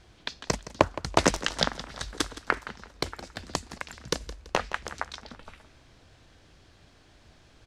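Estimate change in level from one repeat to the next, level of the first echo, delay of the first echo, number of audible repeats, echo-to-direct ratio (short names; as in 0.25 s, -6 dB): -8.5 dB, -15.5 dB, 0.167 s, 2, -15.0 dB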